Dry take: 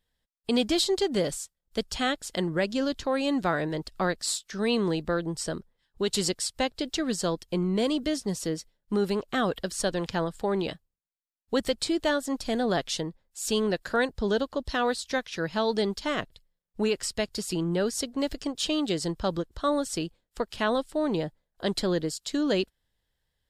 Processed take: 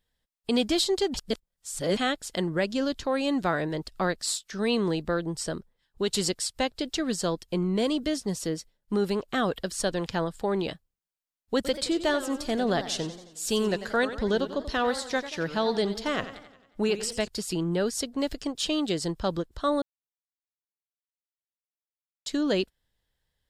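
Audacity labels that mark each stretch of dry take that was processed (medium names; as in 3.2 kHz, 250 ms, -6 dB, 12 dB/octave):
1.140000	1.970000	reverse
11.550000	17.280000	modulated delay 90 ms, feedback 54%, depth 171 cents, level -12.5 dB
19.820000	22.260000	mute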